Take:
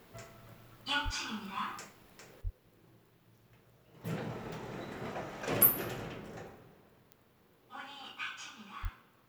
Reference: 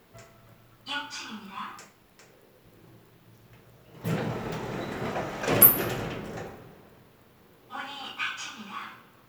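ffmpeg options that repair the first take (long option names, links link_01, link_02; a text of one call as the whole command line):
ffmpeg -i in.wav -filter_complex "[0:a]adeclick=threshold=4,asplit=3[link_01][link_02][link_03];[link_01]afade=type=out:start_time=1.04:duration=0.02[link_04];[link_02]highpass=frequency=140:width=0.5412,highpass=frequency=140:width=1.3066,afade=type=in:start_time=1.04:duration=0.02,afade=type=out:start_time=1.16:duration=0.02[link_05];[link_03]afade=type=in:start_time=1.16:duration=0.02[link_06];[link_04][link_05][link_06]amix=inputs=3:normalize=0,asplit=3[link_07][link_08][link_09];[link_07]afade=type=out:start_time=2.43:duration=0.02[link_10];[link_08]highpass=frequency=140:width=0.5412,highpass=frequency=140:width=1.3066,afade=type=in:start_time=2.43:duration=0.02,afade=type=out:start_time=2.55:duration=0.02[link_11];[link_09]afade=type=in:start_time=2.55:duration=0.02[link_12];[link_10][link_11][link_12]amix=inputs=3:normalize=0,asplit=3[link_13][link_14][link_15];[link_13]afade=type=out:start_time=8.82:duration=0.02[link_16];[link_14]highpass=frequency=140:width=0.5412,highpass=frequency=140:width=1.3066,afade=type=in:start_time=8.82:duration=0.02,afade=type=out:start_time=8.94:duration=0.02[link_17];[link_15]afade=type=in:start_time=8.94:duration=0.02[link_18];[link_16][link_17][link_18]amix=inputs=3:normalize=0,asetnsamples=nb_out_samples=441:pad=0,asendcmd='2.41 volume volume 9dB',volume=0dB" out.wav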